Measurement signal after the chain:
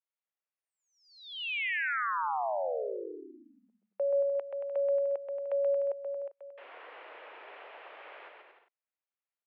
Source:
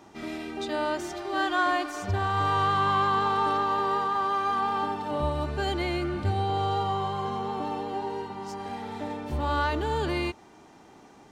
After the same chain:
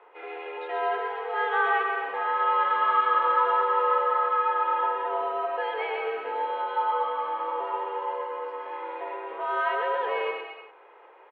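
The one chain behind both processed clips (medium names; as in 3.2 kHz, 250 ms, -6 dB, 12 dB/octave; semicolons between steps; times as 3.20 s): mistuned SSB +97 Hz 350–2700 Hz; bouncing-ball echo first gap 130 ms, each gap 0.75×, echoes 5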